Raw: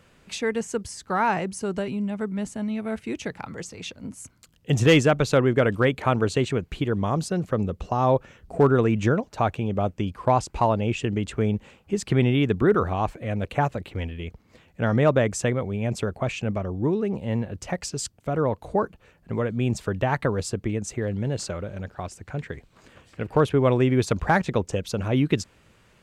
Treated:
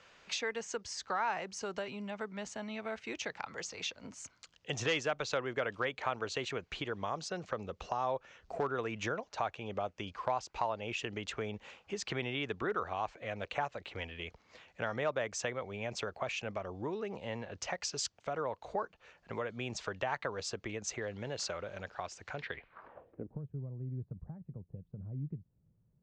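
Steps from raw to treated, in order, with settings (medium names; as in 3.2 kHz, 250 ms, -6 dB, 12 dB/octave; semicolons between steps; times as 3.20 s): three-band isolator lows -15 dB, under 500 Hz, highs -23 dB, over 5.6 kHz; compression 2:1, threshold -39 dBFS, peak gain reduction 12.5 dB; low-pass sweep 6.7 kHz -> 150 Hz, 22.33–23.42 s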